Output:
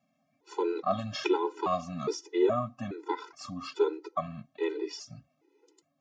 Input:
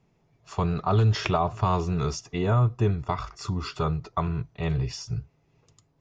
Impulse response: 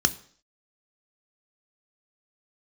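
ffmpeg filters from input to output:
-af "flanger=delay=1.3:depth=3.6:regen=69:speed=1.7:shape=triangular,highpass=f=320:t=q:w=3.5,afftfilt=real='re*gt(sin(2*PI*1.2*pts/sr)*(1-2*mod(floor(b*sr/1024/260),2)),0)':imag='im*gt(sin(2*PI*1.2*pts/sr)*(1-2*mod(floor(b*sr/1024/260),2)),0)':win_size=1024:overlap=0.75,volume=2.5dB"

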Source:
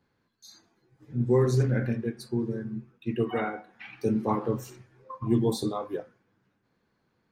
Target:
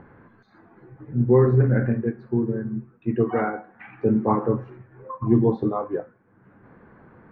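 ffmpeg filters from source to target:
-af "acompressor=mode=upward:threshold=-40dB:ratio=2.5,lowpass=f=1.8k:w=0.5412,lowpass=f=1.8k:w=1.3066,volume=6dB"

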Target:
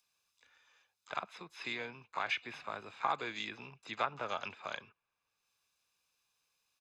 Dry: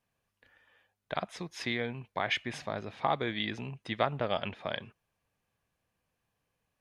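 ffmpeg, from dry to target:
-filter_complex "[0:a]acrossover=split=400 4000:gain=0.158 1 0.0631[a][b][c];[a][b][c]amix=inputs=3:normalize=0,asplit=4[d][e][f][g];[e]asetrate=52444,aresample=44100,atempo=0.840896,volume=-16dB[h];[f]asetrate=58866,aresample=44100,atempo=0.749154,volume=-18dB[i];[g]asetrate=88200,aresample=44100,atempo=0.5,volume=-18dB[j];[d][h][i][j]amix=inputs=4:normalize=0,acrossover=split=120|5400[k][l][m];[m]acompressor=mode=upward:threshold=-56dB:ratio=2.5[n];[k][l][n]amix=inputs=3:normalize=0,aecho=1:1:0.8:0.48,volume=-3.5dB"

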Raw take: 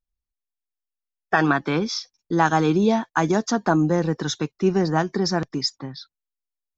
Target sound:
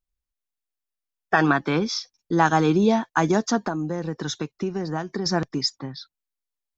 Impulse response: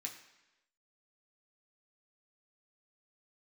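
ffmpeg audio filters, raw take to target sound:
-filter_complex "[0:a]asettb=1/sr,asplit=3[a][b][c];[a]atrim=end=3.584[d];[b]atrim=start=3.58:end=5.26,asetpts=PTS-STARTPTS,afade=t=in:d=0.004:c=qsin,afade=t=out:st=1.676:d=0.004:c=qsin,acompressor=threshold=-24dB:ratio=6[e];[c]atrim=start=5.256[f];[d][e]acrossfade=d=0.004:c1=hsin:c2=qsin[g];[g][f]acrossfade=d=0.004:c1=qsin:c2=hsin"

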